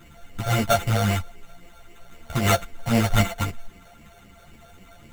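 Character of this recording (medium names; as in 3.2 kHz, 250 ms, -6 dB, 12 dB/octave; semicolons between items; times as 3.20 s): a buzz of ramps at a fixed pitch in blocks of 64 samples; phasing stages 8, 3.8 Hz, lowest notch 270–1300 Hz; aliases and images of a low sample rate 5 kHz, jitter 0%; a shimmering, thickened sound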